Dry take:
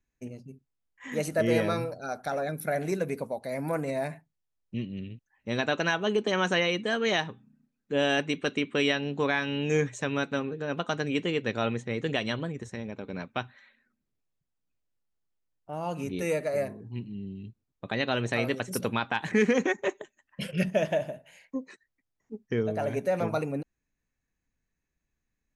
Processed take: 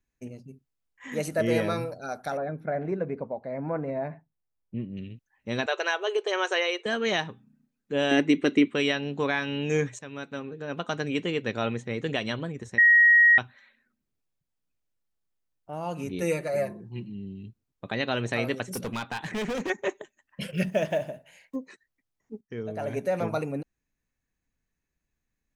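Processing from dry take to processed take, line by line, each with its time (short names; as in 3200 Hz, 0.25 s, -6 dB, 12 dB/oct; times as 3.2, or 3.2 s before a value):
2.37–4.97 LPF 1400 Hz
5.66–6.86 brick-wall FIR band-pass 340–9400 Hz
8.11–8.68 small resonant body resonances 310/2000 Hz, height 12 dB, ringing for 25 ms
9.99–10.99 fade in, from -13.5 dB
12.78–13.38 bleep 1890 Hz -13.5 dBFS
16.21–17.1 comb 5.7 ms, depth 60%
18.71–19.7 hard clip -28 dBFS
20.42–21.56 block floating point 7-bit
22.41–23 fade in, from -15 dB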